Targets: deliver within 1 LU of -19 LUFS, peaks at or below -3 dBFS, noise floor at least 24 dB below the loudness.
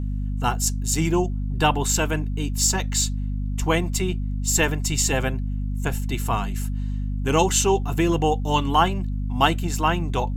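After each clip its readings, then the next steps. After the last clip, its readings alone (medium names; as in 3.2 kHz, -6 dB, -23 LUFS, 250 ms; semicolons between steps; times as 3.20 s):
hum 50 Hz; highest harmonic 250 Hz; hum level -23 dBFS; loudness -23.0 LUFS; peak level -3.0 dBFS; loudness target -19.0 LUFS
-> de-hum 50 Hz, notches 5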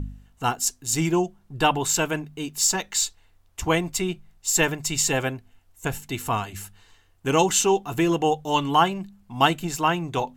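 hum not found; loudness -23.5 LUFS; peak level -3.5 dBFS; loudness target -19.0 LUFS
-> trim +4.5 dB; peak limiter -3 dBFS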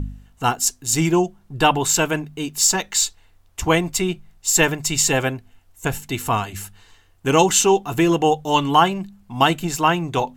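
loudness -19.5 LUFS; peak level -3.0 dBFS; noise floor -55 dBFS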